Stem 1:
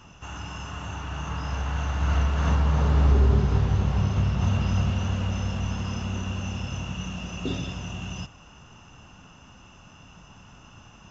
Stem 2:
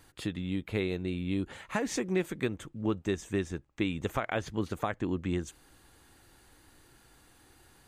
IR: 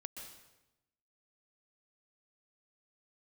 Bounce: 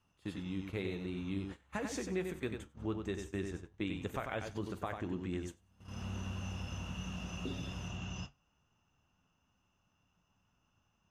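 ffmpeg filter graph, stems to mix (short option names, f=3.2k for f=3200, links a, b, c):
-filter_complex "[0:a]acompressor=threshold=-31dB:ratio=3,volume=-2.5dB[a];[1:a]volume=-3.5dB,asplit=3[b][c][d];[c]volume=-6dB[e];[d]apad=whole_len=489600[f];[a][f]sidechaincompress=threshold=-48dB:ratio=12:attack=16:release=566[g];[e]aecho=0:1:94|188|282:1|0.2|0.04[h];[g][b][h]amix=inputs=3:normalize=0,agate=range=-20dB:threshold=-40dB:ratio=16:detection=peak,flanger=delay=9.9:depth=2.2:regen=-71:speed=0.5:shape=triangular"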